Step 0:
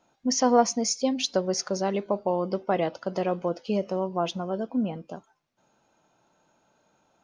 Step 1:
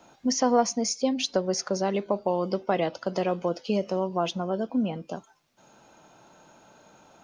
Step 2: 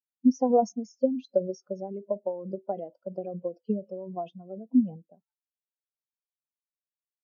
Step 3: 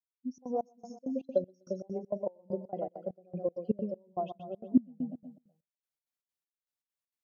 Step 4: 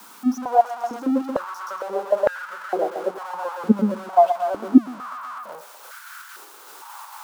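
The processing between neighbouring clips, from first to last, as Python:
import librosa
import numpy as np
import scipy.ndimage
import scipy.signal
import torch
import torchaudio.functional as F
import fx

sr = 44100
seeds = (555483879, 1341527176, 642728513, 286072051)

y1 = fx.band_squash(x, sr, depth_pct=40)
y2 = fx.transient(y1, sr, attack_db=6, sustain_db=10)
y2 = fx.spectral_expand(y2, sr, expansion=2.5)
y2 = y2 * 10.0 ** (-5.5 / 20.0)
y3 = fx.fade_in_head(y2, sr, length_s=2.09)
y3 = fx.echo_feedback(y3, sr, ms=125, feedback_pct=46, wet_db=-8)
y3 = fx.step_gate(y3, sr, bpm=198, pattern='xx.xx.xx...', floor_db=-24.0, edge_ms=4.5)
y4 = y3 + 0.5 * 10.0 ** (-40.5 / 20.0) * np.sign(y3)
y4 = fx.band_shelf(y4, sr, hz=1100.0, db=11.5, octaves=1.1)
y4 = fx.filter_held_highpass(y4, sr, hz=2.2, low_hz=230.0, high_hz=1500.0)
y4 = y4 * 10.0 ** (5.0 / 20.0)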